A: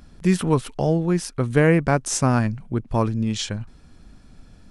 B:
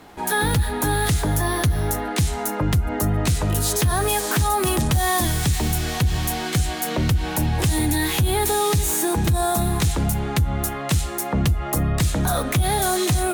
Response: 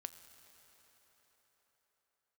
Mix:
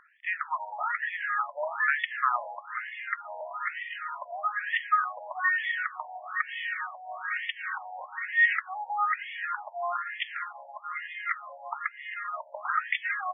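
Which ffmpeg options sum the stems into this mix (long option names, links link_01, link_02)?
-filter_complex "[0:a]volume=-0.5dB[link_01];[1:a]aphaser=in_gain=1:out_gain=1:delay=4.1:decay=0.44:speed=0.2:type=triangular,adelay=400,volume=-1.5dB[link_02];[link_01][link_02]amix=inputs=2:normalize=0,highpass=460,equalizer=frequency=510:width_type=q:width=4:gain=-8,equalizer=frequency=800:width_type=q:width=4:gain=-9,equalizer=frequency=1300:width_type=q:width=4:gain=7,equalizer=frequency=1900:width_type=q:width=4:gain=7,equalizer=frequency=3400:width_type=q:width=4:gain=-3,lowpass=frequency=4400:width=0.5412,lowpass=frequency=4400:width=1.3066,afftfilt=real='re*between(b*sr/1024,690*pow(2500/690,0.5+0.5*sin(2*PI*1.1*pts/sr))/1.41,690*pow(2500/690,0.5+0.5*sin(2*PI*1.1*pts/sr))*1.41)':imag='im*between(b*sr/1024,690*pow(2500/690,0.5+0.5*sin(2*PI*1.1*pts/sr))/1.41,690*pow(2500/690,0.5+0.5*sin(2*PI*1.1*pts/sr))*1.41)':win_size=1024:overlap=0.75"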